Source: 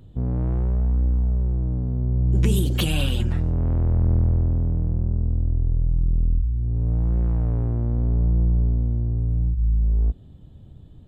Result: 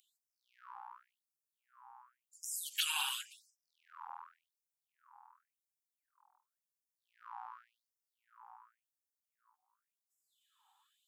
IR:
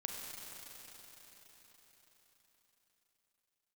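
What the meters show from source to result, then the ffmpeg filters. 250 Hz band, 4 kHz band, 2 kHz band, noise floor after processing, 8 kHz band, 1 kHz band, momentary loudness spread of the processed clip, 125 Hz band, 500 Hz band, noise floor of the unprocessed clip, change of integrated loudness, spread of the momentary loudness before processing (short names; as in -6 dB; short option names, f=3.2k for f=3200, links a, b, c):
under -40 dB, -5.5 dB, -6.5 dB, under -85 dBFS, -2.0 dB, -4.5 dB, 25 LU, under -40 dB, under -40 dB, -45 dBFS, -16.5 dB, 4 LU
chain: -filter_complex "[0:a]acrossover=split=6300[a][b];[b]acompressor=threshold=-42dB:ratio=4:attack=1:release=60[c];[a][c]amix=inputs=2:normalize=0,equalizer=f=125:t=o:w=1:g=-9,equalizer=f=250:t=o:w=1:g=8,equalizer=f=500:t=o:w=1:g=-9,equalizer=f=1k:t=o:w=1:g=5,equalizer=f=2k:t=o:w=1:g=-12,equalizer=f=4k:t=o:w=1:g=-7,afftfilt=real='re*gte(b*sr/1024,740*pow(5100/740,0.5+0.5*sin(2*PI*0.91*pts/sr)))':imag='im*gte(b*sr/1024,740*pow(5100/740,0.5+0.5*sin(2*PI*0.91*pts/sr)))':win_size=1024:overlap=0.75,volume=4dB"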